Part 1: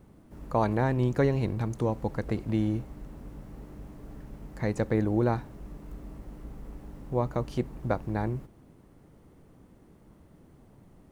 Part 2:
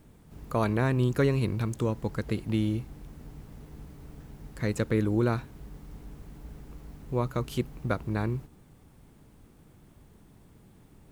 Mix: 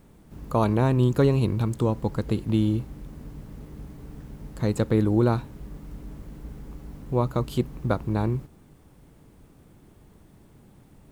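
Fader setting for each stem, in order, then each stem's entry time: -3.0 dB, +1.0 dB; 0.00 s, 0.00 s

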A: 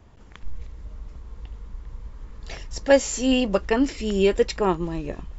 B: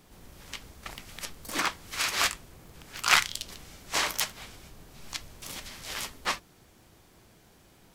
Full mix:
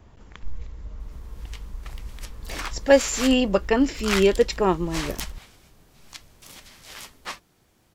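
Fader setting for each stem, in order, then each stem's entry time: +1.0 dB, -5.0 dB; 0.00 s, 1.00 s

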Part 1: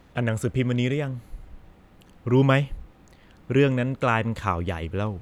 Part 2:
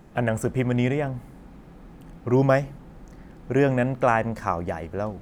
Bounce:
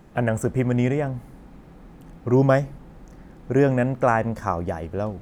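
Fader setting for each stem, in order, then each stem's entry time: -12.0 dB, 0.0 dB; 0.00 s, 0.00 s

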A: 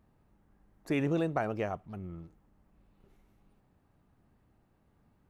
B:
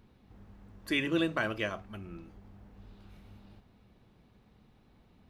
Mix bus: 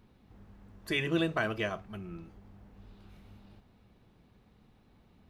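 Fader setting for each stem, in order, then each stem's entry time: -7.5 dB, -0.5 dB; 0.00 s, 0.00 s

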